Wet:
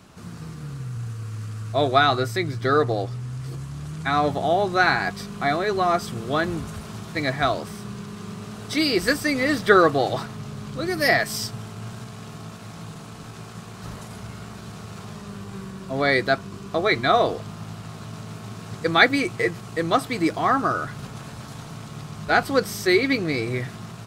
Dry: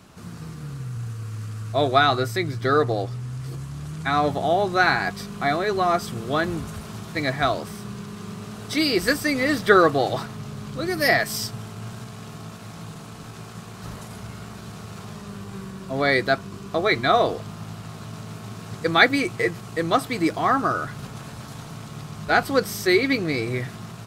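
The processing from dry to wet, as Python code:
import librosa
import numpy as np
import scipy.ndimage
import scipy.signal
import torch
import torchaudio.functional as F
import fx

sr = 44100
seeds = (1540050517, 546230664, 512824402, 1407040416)

y = fx.peak_eq(x, sr, hz=13000.0, db=-3.5, octaves=0.46)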